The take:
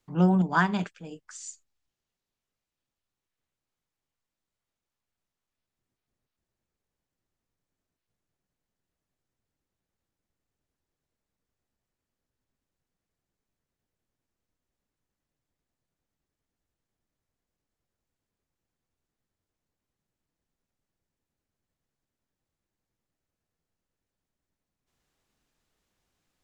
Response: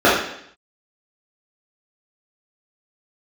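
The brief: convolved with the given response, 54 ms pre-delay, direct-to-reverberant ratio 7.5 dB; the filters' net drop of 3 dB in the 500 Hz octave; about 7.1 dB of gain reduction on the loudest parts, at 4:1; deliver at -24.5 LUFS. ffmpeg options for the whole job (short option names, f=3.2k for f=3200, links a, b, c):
-filter_complex "[0:a]equalizer=f=500:t=o:g=-4.5,acompressor=threshold=-26dB:ratio=4,asplit=2[a][b];[1:a]atrim=start_sample=2205,adelay=54[c];[b][c]afir=irnorm=-1:irlink=0,volume=-35.5dB[d];[a][d]amix=inputs=2:normalize=0,volume=8.5dB"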